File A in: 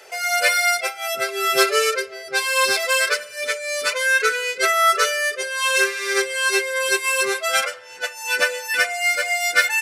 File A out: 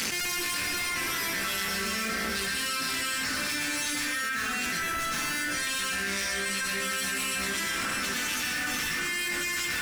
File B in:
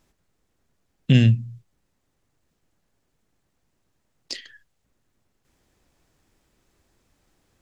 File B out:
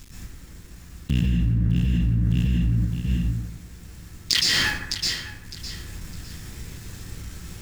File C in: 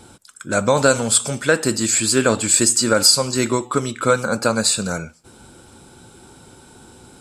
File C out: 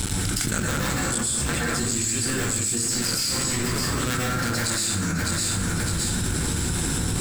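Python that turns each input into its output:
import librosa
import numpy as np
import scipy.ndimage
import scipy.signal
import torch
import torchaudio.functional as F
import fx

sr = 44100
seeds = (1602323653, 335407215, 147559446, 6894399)

y = fx.cycle_switch(x, sr, every=2, mode='muted')
y = fx.tone_stack(y, sr, knobs='6-0-2')
y = fx.echo_feedback(y, sr, ms=608, feedback_pct=26, wet_db=-15.5)
y = fx.rev_plate(y, sr, seeds[0], rt60_s=1.0, hf_ratio=0.45, predelay_ms=105, drr_db=-9.0)
y = fx.env_flatten(y, sr, amount_pct=100)
y = F.gain(torch.from_numpy(y), -1.5).numpy()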